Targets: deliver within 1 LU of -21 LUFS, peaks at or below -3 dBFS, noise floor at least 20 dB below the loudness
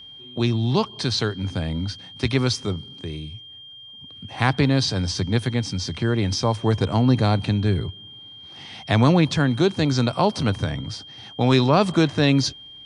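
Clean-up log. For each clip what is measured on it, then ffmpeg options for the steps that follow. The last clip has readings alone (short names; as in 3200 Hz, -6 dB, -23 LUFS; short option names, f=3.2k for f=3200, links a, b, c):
steady tone 3200 Hz; tone level -40 dBFS; loudness -21.5 LUFS; peak -4.5 dBFS; loudness target -21.0 LUFS
-> -af "bandreject=f=3.2k:w=30"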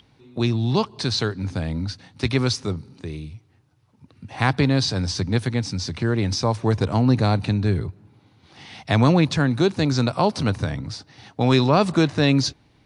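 steady tone none; loudness -22.0 LUFS; peak -4.5 dBFS; loudness target -21.0 LUFS
-> -af "volume=1dB"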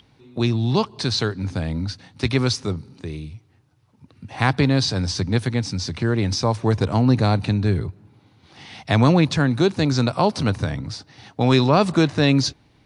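loudness -21.0 LUFS; peak -3.5 dBFS; noise floor -58 dBFS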